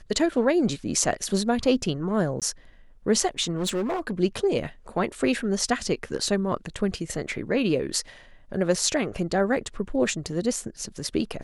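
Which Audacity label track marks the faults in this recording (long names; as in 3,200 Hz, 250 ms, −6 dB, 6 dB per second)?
2.400000	2.420000	drop-out 17 ms
3.580000	4.120000	clipping −22.5 dBFS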